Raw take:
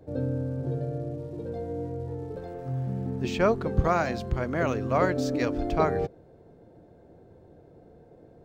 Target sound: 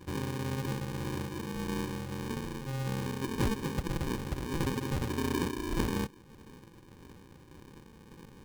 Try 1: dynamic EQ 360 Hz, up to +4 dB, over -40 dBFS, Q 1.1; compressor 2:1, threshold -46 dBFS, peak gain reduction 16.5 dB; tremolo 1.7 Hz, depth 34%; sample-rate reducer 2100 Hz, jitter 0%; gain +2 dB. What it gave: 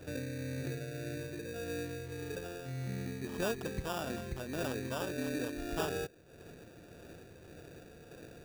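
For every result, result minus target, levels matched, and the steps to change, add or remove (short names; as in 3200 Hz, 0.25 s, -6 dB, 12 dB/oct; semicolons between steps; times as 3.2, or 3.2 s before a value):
sample-rate reducer: distortion -16 dB; compressor: peak gain reduction +5 dB
change: sample-rate reducer 670 Hz, jitter 0%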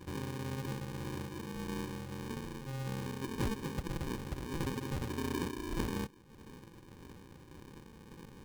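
compressor: peak gain reduction +5 dB
change: compressor 2:1, threshold -36.5 dBFS, peak gain reduction 11.5 dB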